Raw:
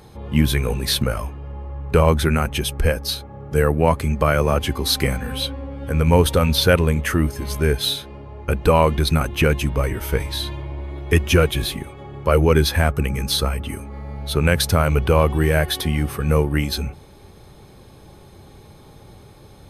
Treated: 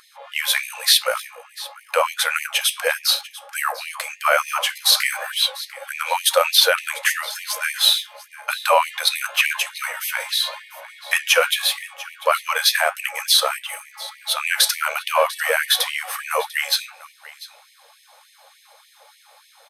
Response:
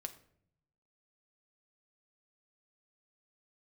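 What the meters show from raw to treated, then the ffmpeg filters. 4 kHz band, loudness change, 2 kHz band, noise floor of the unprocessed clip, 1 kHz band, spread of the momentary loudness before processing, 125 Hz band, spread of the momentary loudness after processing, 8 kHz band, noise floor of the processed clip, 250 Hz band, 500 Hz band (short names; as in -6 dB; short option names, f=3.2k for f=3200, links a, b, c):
+6.5 dB, 0.0 dB, +5.0 dB, -45 dBFS, +1.5 dB, 13 LU, under -40 dB, 15 LU, +6.5 dB, -54 dBFS, under -40 dB, -5.5 dB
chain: -filter_complex "[0:a]highpass=50,lowshelf=f=470:g=-6.5,asplit=2[a][b];[b]aeval=exprs='sgn(val(0))*max(abs(val(0))-0.0075,0)':c=same,volume=-4dB[c];[a][c]amix=inputs=2:normalize=0,flanger=delay=9.1:depth=7.4:regen=-72:speed=0.92:shape=triangular,aecho=1:1:695:0.119,alimiter=level_in=8.5dB:limit=-1dB:release=50:level=0:latency=1,afftfilt=real='re*gte(b*sr/1024,460*pow(1800/460,0.5+0.5*sin(2*PI*3.4*pts/sr)))':imag='im*gte(b*sr/1024,460*pow(1800/460,0.5+0.5*sin(2*PI*3.4*pts/sr)))':win_size=1024:overlap=0.75,volume=-1dB"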